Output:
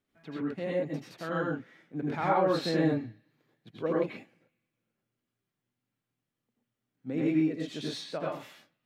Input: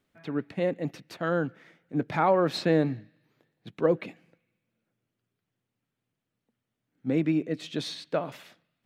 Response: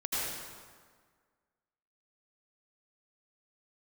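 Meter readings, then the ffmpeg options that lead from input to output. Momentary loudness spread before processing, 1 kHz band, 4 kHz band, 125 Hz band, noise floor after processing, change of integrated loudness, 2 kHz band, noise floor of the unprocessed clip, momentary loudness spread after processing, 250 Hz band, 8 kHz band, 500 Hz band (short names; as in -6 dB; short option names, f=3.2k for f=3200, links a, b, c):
12 LU, -2.0 dB, -2.5 dB, -3.5 dB, under -85 dBFS, -2.5 dB, -2.5 dB, -85 dBFS, 14 LU, -1.5 dB, n/a, -3.5 dB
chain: -filter_complex "[1:a]atrim=start_sample=2205,atrim=end_sample=6174[a];[0:a][a]afir=irnorm=-1:irlink=0,volume=-6dB"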